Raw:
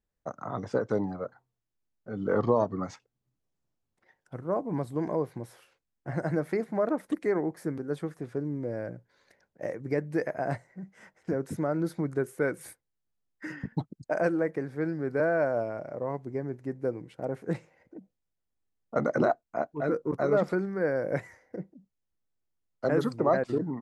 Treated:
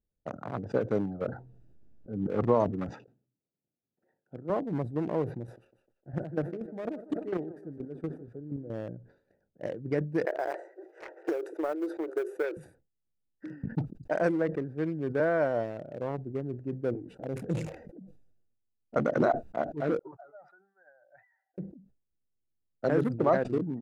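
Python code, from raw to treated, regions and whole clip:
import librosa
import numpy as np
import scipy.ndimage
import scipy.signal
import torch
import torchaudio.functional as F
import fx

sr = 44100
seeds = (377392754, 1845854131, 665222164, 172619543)

y = fx.chain(x, sr, fx.low_shelf(hz=480.0, db=3.0),
    fx.auto_swell(attack_ms=185.0),
    fx.env_flatten(amount_pct=50), at=(1.21, 2.39))
y = fx.chain(y, sr, fx.highpass(hz=170.0, slope=12),
    fx.high_shelf(hz=6000.0, db=-8.5), at=(2.89, 4.5))
y = fx.chain(y, sr, fx.chopper(hz=4.2, depth_pct=65, duty_pct=20),
    fx.echo_thinned(ms=152, feedback_pct=63, hz=280.0, wet_db=-12.5), at=(5.42, 8.7))
y = fx.chain(y, sr, fx.block_float(bits=7),
    fx.brickwall_highpass(low_hz=310.0),
    fx.band_squash(depth_pct=100), at=(10.25, 12.57))
y = fx.chain(y, sr, fx.peak_eq(hz=11000.0, db=10.0, octaves=2.3),
    fx.env_flanger(rest_ms=9.1, full_db=-27.5),
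    fx.sustainer(db_per_s=55.0), at=(16.94, 18.96))
y = fx.chain(y, sr, fx.spec_expand(power=1.8),
    fx.ellip_highpass(hz=770.0, order=4, stop_db=40), at=(19.99, 21.58))
y = fx.wiener(y, sr, points=41)
y = fx.sustainer(y, sr, db_per_s=120.0)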